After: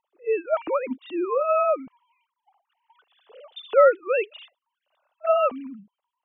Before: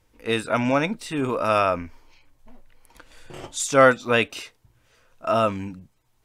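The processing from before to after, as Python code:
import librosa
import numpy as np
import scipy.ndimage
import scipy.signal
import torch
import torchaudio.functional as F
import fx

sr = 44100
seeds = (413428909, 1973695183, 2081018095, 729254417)

y = fx.sine_speech(x, sr)
y = fx.band_shelf(y, sr, hz=1900.0, db=-10.0, octaves=1.0)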